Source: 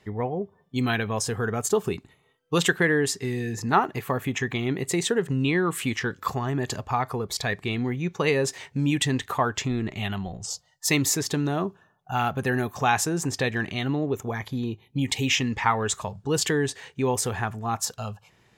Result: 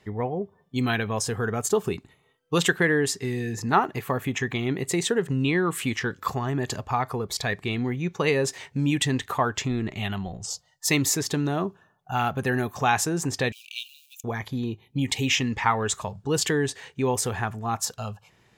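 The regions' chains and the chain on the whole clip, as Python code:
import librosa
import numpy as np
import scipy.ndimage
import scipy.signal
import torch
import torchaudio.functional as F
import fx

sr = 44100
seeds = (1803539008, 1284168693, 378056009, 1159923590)

y = fx.chain(x, sr, fx.law_mismatch(coded='A'),
    fx.brickwall_highpass(low_hz=2300.0),
    fx.high_shelf(hz=7300.0, db=7.0), at=(13.52, 14.24))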